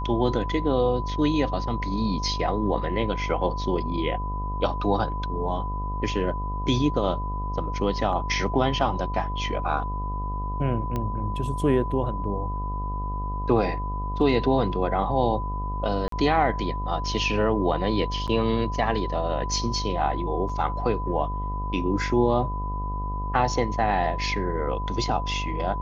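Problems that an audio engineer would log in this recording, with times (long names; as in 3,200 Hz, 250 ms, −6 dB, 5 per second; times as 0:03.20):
mains buzz 50 Hz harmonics 24 −30 dBFS
whistle 1,000 Hz −32 dBFS
0:10.96: click −16 dBFS
0:16.08–0:16.12: drop-out 43 ms
0:18.27–0:18.28: drop-out 7.6 ms
0:20.49: drop-out 4.4 ms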